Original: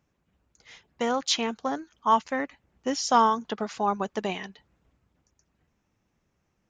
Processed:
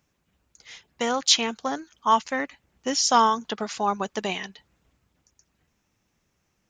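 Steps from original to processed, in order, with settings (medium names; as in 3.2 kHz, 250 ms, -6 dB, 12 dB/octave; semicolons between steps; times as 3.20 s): treble shelf 2.2 kHz +9 dB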